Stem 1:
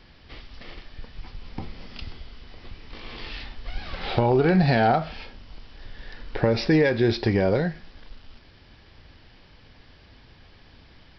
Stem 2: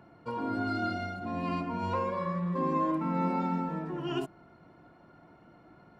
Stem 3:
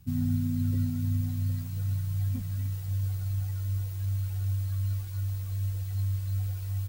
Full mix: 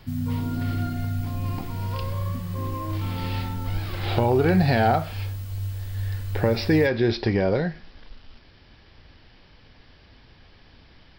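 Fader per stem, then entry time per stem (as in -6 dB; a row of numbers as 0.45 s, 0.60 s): -0.5 dB, -5.0 dB, +0.5 dB; 0.00 s, 0.00 s, 0.00 s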